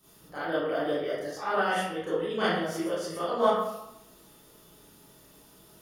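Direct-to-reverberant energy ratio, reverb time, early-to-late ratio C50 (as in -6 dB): -12.5 dB, 0.85 s, -2.5 dB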